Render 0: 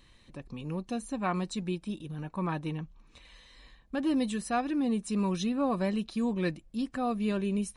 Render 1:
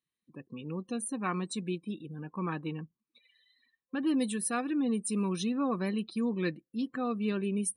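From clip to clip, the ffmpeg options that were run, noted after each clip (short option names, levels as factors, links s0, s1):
-af "highpass=170,afftdn=nr=31:nf=-49,superequalizer=8b=0.398:9b=0.562:16b=3.55"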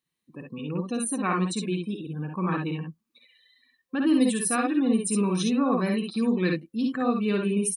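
-af "aecho=1:1:54|66:0.562|0.562,volume=1.78"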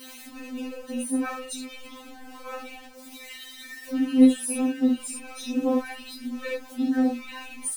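-af "aeval=exprs='val(0)+0.5*0.0266*sgn(val(0))':c=same,flanger=delay=19:depth=7.4:speed=0.64,afftfilt=real='re*3.46*eq(mod(b,12),0)':imag='im*3.46*eq(mod(b,12),0)':win_size=2048:overlap=0.75"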